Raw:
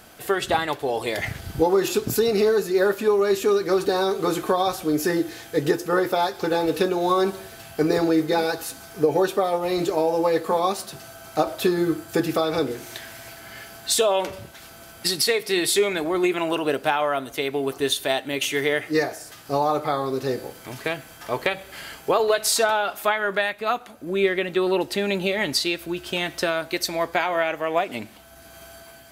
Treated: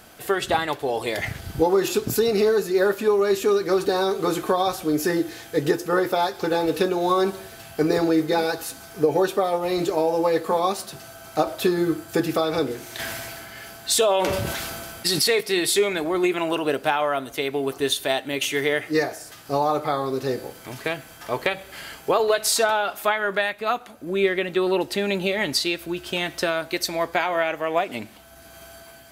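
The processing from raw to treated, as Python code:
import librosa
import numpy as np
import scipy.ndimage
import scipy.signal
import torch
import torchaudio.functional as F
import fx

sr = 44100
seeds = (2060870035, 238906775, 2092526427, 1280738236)

y = fx.sustainer(x, sr, db_per_s=24.0, at=(12.98, 15.39), fade=0.02)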